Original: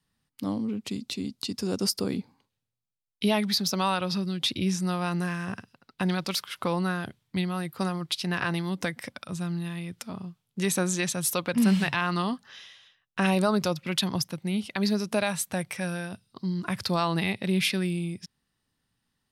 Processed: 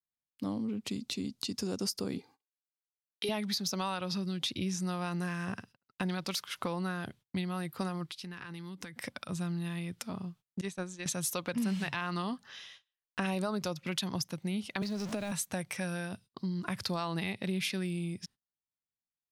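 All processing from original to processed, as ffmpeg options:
-filter_complex "[0:a]asettb=1/sr,asplit=3[a][b][c];[a]atrim=end=2.184[d];[b]atrim=start=2.18:end=3.29,asetpts=PTS-STARTPTS,afade=t=in:d=0.004:c=qsin,afade=t=out:st=1.106:d=0.004:c=qsin,highpass=f=390:p=1,aecho=1:1:2.5:0.75,atrim=end_sample=48951[e];[c]atrim=start=3.286[f];[d][e]acrossfade=d=0.004:c1=hsin:c2=qsin[g];[g][f]acrossfade=d=0.004:c1=qsin:c2=hsin,asettb=1/sr,asplit=3[h][i][j];[h]atrim=end=8.054[k];[i]atrim=start=8.05:end=8.96,asetpts=PTS-STARTPTS,afade=t=in:d=0.004:c=qsin,afade=t=out:st=0.906:d=0.004:c=qsin,equalizer=f=630:w=3.6:g=-14.5,acompressor=threshold=-38dB:ratio=12:attack=3.2:release=140:knee=1:detection=peak[l];[j]atrim=start=8.956[m];[k][l]acrossfade=d=0.004:c1=hsin:c2=qsin[n];[n][m]acrossfade=d=0.004:c1=qsin:c2=hsin,asettb=1/sr,asplit=3[o][p][q];[o]atrim=end=10.614[r];[p]atrim=start=10.61:end=11.06,asetpts=PTS-STARTPTS,afade=t=in:d=0.004:c=qsin,afade=t=out:st=0.446:d=0.004:c=qsin,lowpass=8.1k,agate=range=-33dB:threshold=-19dB:ratio=3:release=100:detection=peak[s];[q]atrim=start=11.056[t];[r][s]acrossfade=d=0.004:c1=hsin:c2=qsin[u];[u][t]acrossfade=d=0.004:c1=qsin:c2=hsin,asettb=1/sr,asplit=3[v][w][x];[v]atrim=end=14.824[y];[w]atrim=start=14.82:end=15.32,asetpts=PTS-STARTPTS,afade=t=in:d=0.004:c=qsin,afade=t=out:st=0.496:d=0.004:c=qsin,aeval=exprs='val(0)+0.5*0.0316*sgn(val(0))':c=same,acrossover=split=460|7700[z][aa][ab];[z]acompressor=threshold=-30dB:ratio=4[ac];[aa]acompressor=threshold=-37dB:ratio=4[ad];[ab]acompressor=threshold=-58dB:ratio=4[ae];[ac][ad][ae]amix=inputs=3:normalize=0[af];[x]atrim=start=15.316[ag];[y][af]acrossfade=d=0.004:c1=hsin:c2=qsin[ah];[ah][ag]acrossfade=d=0.004:c1=qsin:c2=hsin,agate=range=-28dB:threshold=-51dB:ratio=16:detection=peak,adynamicequalizer=threshold=0.00501:dfrequency=6400:dqfactor=3.3:tfrequency=6400:tqfactor=3.3:attack=5:release=100:ratio=0.375:range=2.5:mode=boostabove:tftype=bell,acompressor=threshold=-31dB:ratio=3,volume=-1.5dB"

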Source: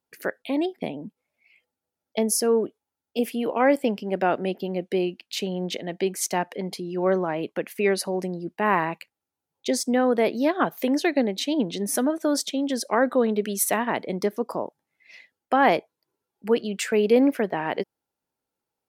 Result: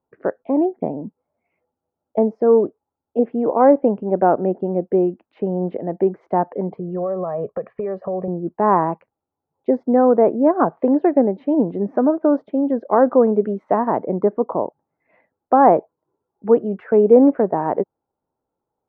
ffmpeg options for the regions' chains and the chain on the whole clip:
-filter_complex "[0:a]asettb=1/sr,asplit=3[a][b][c];[a]atrim=end=6.784[d];[b]atrim=start=6.78:end=8.28,asetpts=PTS-STARTPTS,afade=t=in:d=0.004:c=qsin,afade=t=out:st=1.496:d=0.004:c=qsin,aecho=1:1:1.7:0.88,atrim=end_sample=66150,acompressor=threshold=-27dB:ratio=12:attack=3.2:release=140:knee=1:detection=peak[e];[c]atrim=start=8.276[f];[d][e]acrossfade=d=0.004:c1=hsin:c2=qsin[g];[g][f]acrossfade=d=0.004:c1=qsin:c2=hsin,lowpass=f=1.1k:w=0.5412,lowpass=f=1.1k:w=1.3066,equalizer=f=220:t=o:w=0.77:g=-2.5,volume=8dB"

